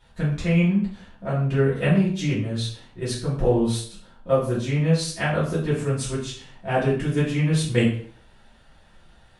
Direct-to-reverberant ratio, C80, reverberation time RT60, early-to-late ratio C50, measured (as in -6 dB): -9.5 dB, 9.0 dB, 0.50 s, 4.5 dB